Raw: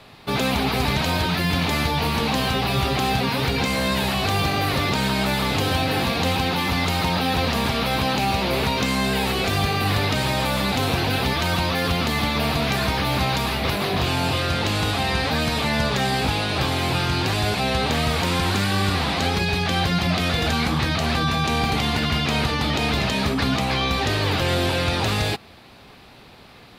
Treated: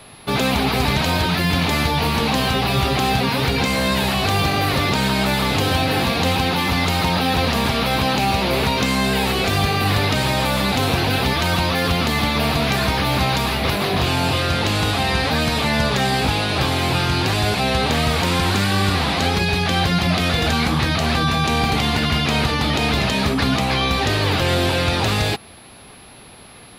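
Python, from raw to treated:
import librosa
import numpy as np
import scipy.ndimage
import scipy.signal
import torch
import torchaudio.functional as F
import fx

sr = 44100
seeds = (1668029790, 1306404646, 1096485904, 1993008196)

y = x + 10.0 ** (-50.0 / 20.0) * np.sin(2.0 * np.pi * 11000.0 * np.arange(len(x)) / sr)
y = y * 10.0 ** (3.0 / 20.0)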